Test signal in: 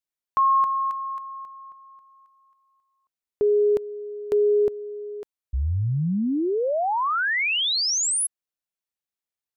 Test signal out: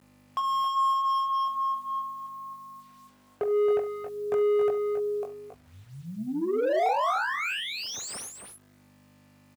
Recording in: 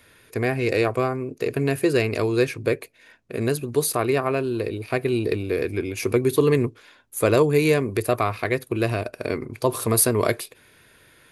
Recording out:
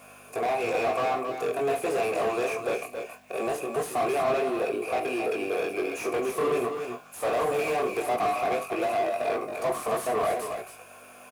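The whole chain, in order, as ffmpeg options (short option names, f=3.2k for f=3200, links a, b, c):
-filter_complex "[0:a]aexciter=amount=11.6:drive=9.2:freq=6.1k,asplit=3[a][b][c];[a]bandpass=f=730:t=q:w=8,volume=0dB[d];[b]bandpass=f=1.09k:t=q:w=8,volume=-6dB[e];[c]bandpass=f=2.44k:t=q:w=8,volume=-9dB[f];[d][e][f]amix=inputs=3:normalize=0,aeval=exprs='val(0)+0.000501*(sin(2*PI*50*n/s)+sin(2*PI*2*50*n/s)/2+sin(2*PI*3*50*n/s)/3+sin(2*PI*4*50*n/s)/4+sin(2*PI*5*50*n/s)/5)':c=same,highshelf=f=5k:g=2.5,flanger=delay=19.5:depth=5.7:speed=0.21,asplit=2[g][h];[h]highpass=f=720:p=1,volume=33dB,asoftclip=type=tanh:threshold=-19dB[i];[g][i]amix=inputs=2:normalize=0,lowpass=f=1.3k:p=1,volume=-6dB,lowshelf=f=340:g=5.5,acrusher=bits=9:mix=0:aa=0.000001,highpass=f=220:p=1,asplit=2[j][k];[k]aecho=0:1:43|72|273|289:0.237|0.133|0.398|0.2[l];[j][l]amix=inputs=2:normalize=0"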